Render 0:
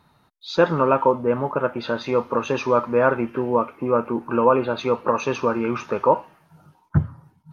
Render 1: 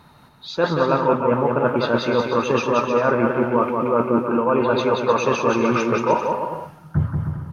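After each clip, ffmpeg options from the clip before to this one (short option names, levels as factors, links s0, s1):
-af "areverse,acompressor=threshold=0.0501:ratio=6,areverse,aecho=1:1:180|306|394.2|455.9|499.2:0.631|0.398|0.251|0.158|0.1,volume=2.82"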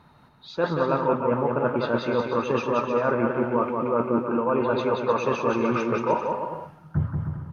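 -af "highshelf=f=4500:g=-10,volume=0.596"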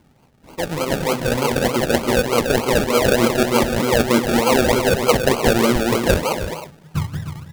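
-af "dynaudnorm=f=380:g=7:m=2.66,acrusher=samples=34:mix=1:aa=0.000001:lfo=1:lforange=20.4:lforate=3.3"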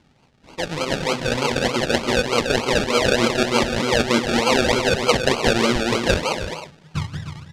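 -af "lowpass=4800,highshelf=f=2300:g=10.5,volume=0.668"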